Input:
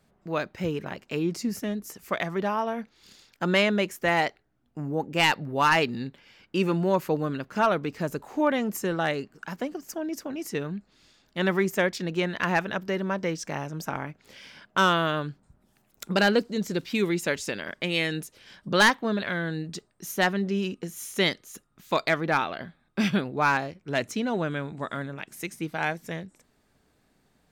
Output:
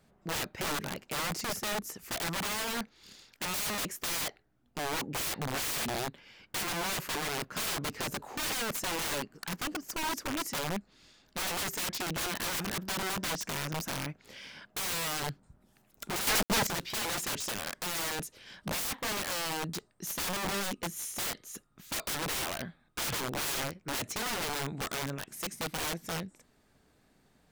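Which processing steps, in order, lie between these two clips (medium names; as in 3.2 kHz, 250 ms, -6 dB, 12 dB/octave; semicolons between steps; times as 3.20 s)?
integer overflow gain 28.5 dB; 16.27–16.67 s: companded quantiser 2-bit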